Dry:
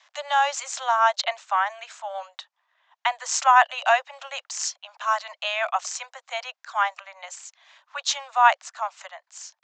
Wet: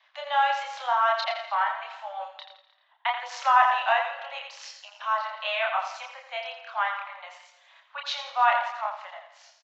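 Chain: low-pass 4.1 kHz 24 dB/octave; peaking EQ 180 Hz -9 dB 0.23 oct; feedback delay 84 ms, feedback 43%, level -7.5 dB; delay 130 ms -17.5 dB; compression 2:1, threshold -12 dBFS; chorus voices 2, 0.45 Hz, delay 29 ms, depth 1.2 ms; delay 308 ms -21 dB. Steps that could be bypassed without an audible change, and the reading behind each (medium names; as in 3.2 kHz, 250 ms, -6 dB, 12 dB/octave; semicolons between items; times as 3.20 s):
peaking EQ 180 Hz: input has nothing below 480 Hz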